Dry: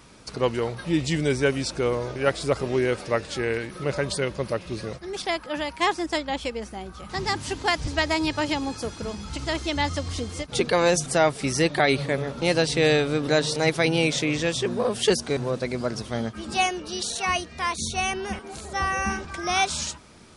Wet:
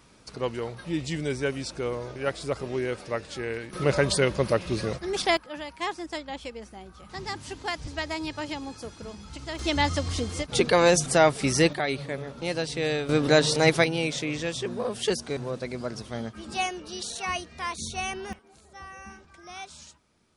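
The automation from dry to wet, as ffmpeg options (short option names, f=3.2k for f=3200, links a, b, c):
-af "asetnsamples=n=441:p=0,asendcmd='3.73 volume volume 3.5dB;5.37 volume volume -8dB;9.59 volume volume 1dB;11.73 volume volume -7.5dB;13.09 volume volume 2dB;13.84 volume volume -5.5dB;18.33 volume volume -18dB',volume=-6dB"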